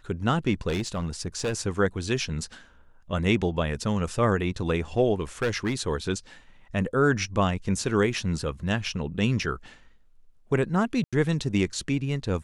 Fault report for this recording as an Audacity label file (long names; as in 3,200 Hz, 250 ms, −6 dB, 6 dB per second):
0.680000	1.540000	clipping −23.5 dBFS
5.200000	5.730000	clipping −20.5 dBFS
11.040000	11.130000	drop-out 86 ms